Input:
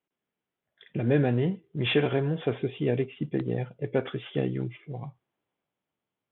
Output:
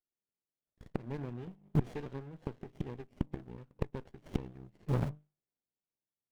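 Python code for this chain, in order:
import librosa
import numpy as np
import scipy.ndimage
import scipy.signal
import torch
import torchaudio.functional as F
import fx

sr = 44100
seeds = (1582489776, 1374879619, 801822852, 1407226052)

p1 = np.where(np.abs(x) >= 10.0 ** (-37.5 / 20.0), x, 0.0)
p2 = x + (p1 * librosa.db_to_amplitude(-9.0))
p3 = fx.hum_notches(p2, sr, base_hz=50, count=6)
p4 = fx.power_curve(p3, sr, exponent=1.4)
p5 = fx.gate_flip(p4, sr, shuts_db=-29.0, range_db=-30)
p6 = fx.running_max(p5, sr, window=33)
y = p6 * librosa.db_to_amplitude(13.0)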